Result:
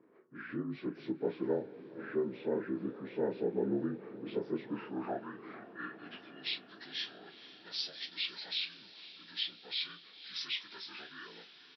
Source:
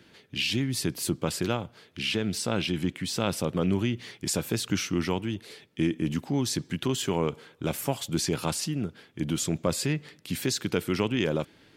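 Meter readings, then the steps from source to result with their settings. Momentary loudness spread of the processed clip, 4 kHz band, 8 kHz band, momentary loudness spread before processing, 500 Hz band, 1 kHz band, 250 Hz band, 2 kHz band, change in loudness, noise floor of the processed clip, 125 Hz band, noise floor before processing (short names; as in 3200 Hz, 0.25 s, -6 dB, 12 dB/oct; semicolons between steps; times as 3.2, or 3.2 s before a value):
14 LU, -6.0 dB, under -30 dB, 6 LU, -6.5 dB, -11.0 dB, -11.0 dB, -9.0 dB, -9.0 dB, -58 dBFS, -20.0 dB, -59 dBFS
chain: inharmonic rescaling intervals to 76%; band-pass sweep 430 Hz -> 4200 Hz, 4.68–6.48; doubler 34 ms -12 dB; diffused feedback echo 0.482 s, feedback 69%, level -15.5 dB; gain +1 dB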